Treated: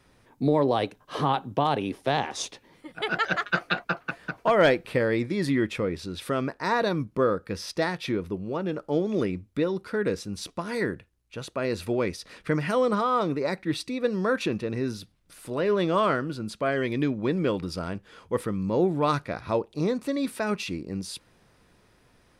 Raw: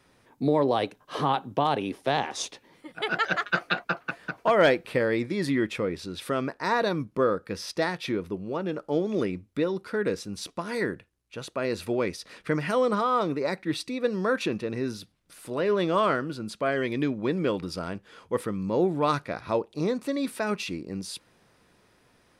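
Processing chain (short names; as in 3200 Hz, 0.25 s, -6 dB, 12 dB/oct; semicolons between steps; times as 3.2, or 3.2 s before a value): low shelf 92 Hz +10 dB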